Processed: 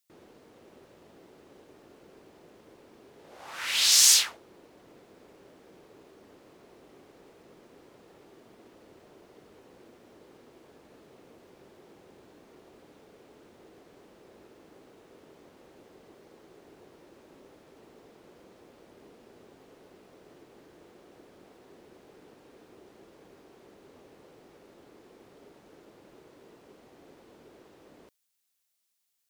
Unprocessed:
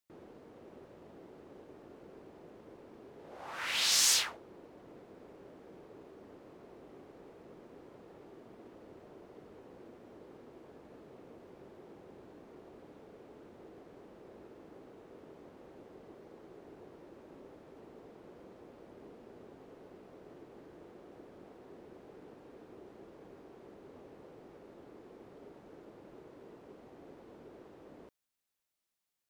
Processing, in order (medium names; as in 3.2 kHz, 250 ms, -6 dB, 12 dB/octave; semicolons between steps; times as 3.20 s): treble shelf 2.2 kHz +12 dB; trim -2 dB